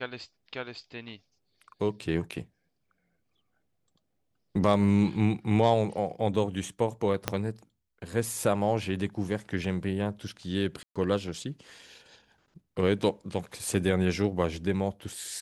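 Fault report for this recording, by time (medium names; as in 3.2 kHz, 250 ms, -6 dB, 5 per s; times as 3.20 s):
7.28 s: pop -10 dBFS
10.83–10.96 s: dropout 126 ms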